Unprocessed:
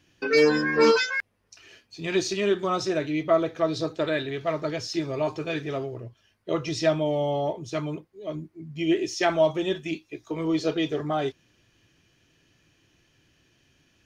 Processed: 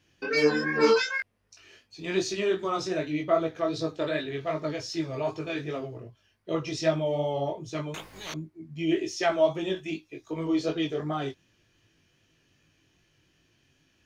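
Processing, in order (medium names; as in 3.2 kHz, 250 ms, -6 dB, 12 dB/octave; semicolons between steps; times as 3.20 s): chorus 2.6 Hz, delay 18.5 ms, depth 3.8 ms; 7.94–8.34 s: spectrum-flattening compressor 10:1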